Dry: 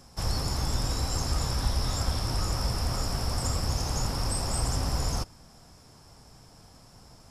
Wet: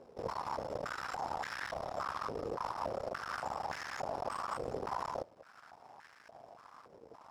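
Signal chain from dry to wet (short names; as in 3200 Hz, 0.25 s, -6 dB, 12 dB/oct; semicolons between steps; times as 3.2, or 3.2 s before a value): in parallel at 0 dB: compressor 6:1, threshold -42 dBFS, peak gain reduction 20.5 dB; on the sum: half-wave rectifier; companded quantiser 4-bit; stepped band-pass 3.5 Hz 460–1700 Hz; gain +8 dB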